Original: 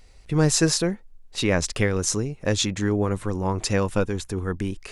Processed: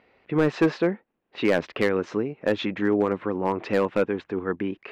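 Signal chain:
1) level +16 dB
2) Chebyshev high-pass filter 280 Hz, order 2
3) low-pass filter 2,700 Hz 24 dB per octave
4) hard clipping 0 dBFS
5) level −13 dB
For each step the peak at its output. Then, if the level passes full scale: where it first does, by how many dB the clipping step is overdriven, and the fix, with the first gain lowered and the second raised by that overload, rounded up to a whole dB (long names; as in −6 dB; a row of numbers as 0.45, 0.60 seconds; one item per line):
+11.0, +10.0, +8.5, 0.0, −13.0 dBFS
step 1, 8.5 dB
step 1 +7 dB, step 5 −4 dB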